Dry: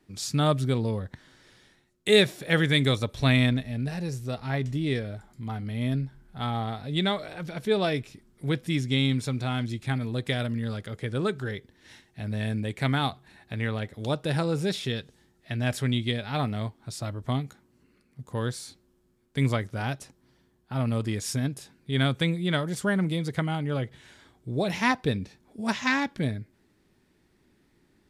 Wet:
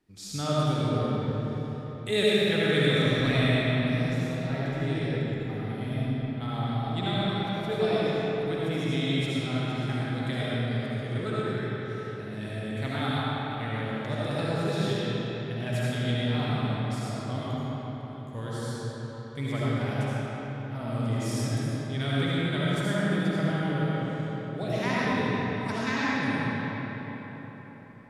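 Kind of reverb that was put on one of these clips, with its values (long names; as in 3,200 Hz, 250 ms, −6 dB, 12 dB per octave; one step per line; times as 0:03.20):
comb and all-pass reverb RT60 4.7 s, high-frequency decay 0.6×, pre-delay 35 ms, DRR −9 dB
level −9.5 dB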